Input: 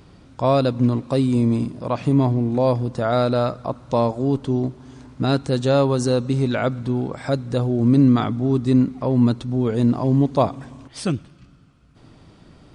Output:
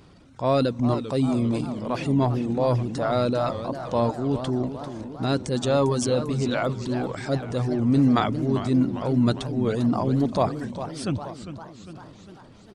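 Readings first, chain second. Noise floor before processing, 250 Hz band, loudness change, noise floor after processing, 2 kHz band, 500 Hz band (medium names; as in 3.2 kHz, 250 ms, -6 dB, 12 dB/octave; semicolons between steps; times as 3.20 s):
-50 dBFS, -4.0 dB, -4.0 dB, -48 dBFS, -1.5 dB, -3.5 dB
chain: reverb removal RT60 0.81 s; bass shelf 130 Hz -3.5 dB; delay 880 ms -23.5 dB; transient shaper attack -4 dB, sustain +7 dB; modulated delay 397 ms, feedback 59%, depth 205 cents, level -11 dB; trim -2 dB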